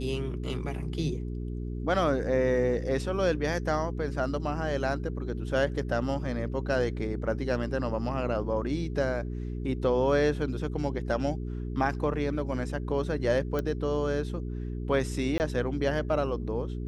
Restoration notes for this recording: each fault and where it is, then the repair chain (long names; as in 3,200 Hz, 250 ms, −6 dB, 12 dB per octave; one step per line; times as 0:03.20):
mains hum 60 Hz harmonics 7 −34 dBFS
0:13.59: click −18 dBFS
0:15.38–0:15.40: drop-out 19 ms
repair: click removal
hum removal 60 Hz, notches 7
repair the gap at 0:15.38, 19 ms